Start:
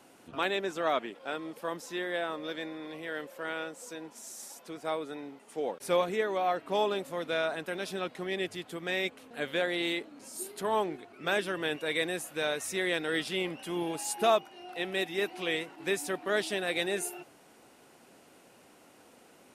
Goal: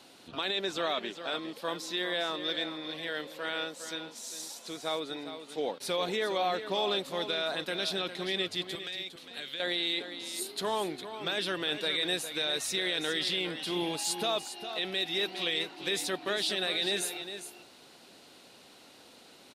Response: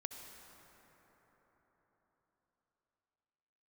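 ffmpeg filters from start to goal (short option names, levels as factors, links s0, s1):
-filter_complex "[0:a]equalizer=f=4000:w=1.7:g=14.5,alimiter=limit=0.0891:level=0:latency=1:release=24,asettb=1/sr,asplit=3[s0][s1][s2];[s0]atrim=end=8.754[s3];[s1]atrim=start=8.75:end=9.6,asetpts=PTS-STARTPTS,afade=t=in:d=0.004:c=qsin,afade=t=out:st=0.846:d=0.004:c=qsin,acrossover=split=270|1400|3500[s4][s5][s6][s7];[s4]acompressor=threshold=0.001:ratio=4[s8];[s5]acompressor=threshold=0.00251:ratio=4[s9];[s6]acompressor=threshold=0.00631:ratio=4[s10];[s7]acompressor=threshold=0.00708:ratio=4[s11];[s8][s9][s10][s11]amix=inputs=4:normalize=0[s12];[s2]atrim=start=9.596[s13];[s3][s12]acrossfade=d=0.004:c1=hsin:c2=qsin[s14];[s14][s13]acrossfade=d=0.004:c1=qsin:c2=hsin,aecho=1:1:406:0.299"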